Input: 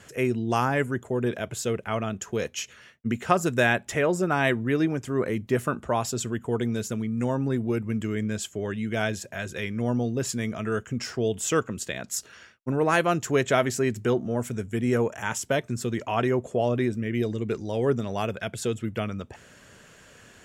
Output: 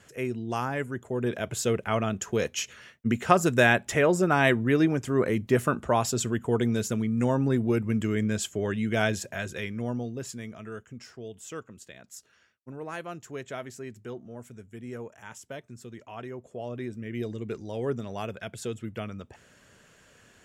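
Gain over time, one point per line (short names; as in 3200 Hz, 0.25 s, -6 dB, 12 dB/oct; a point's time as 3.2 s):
0.89 s -6 dB
1.58 s +1.5 dB
9.23 s +1.5 dB
10.15 s -8 dB
11.22 s -15 dB
16.36 s -15 dB
17.24 s -6 dB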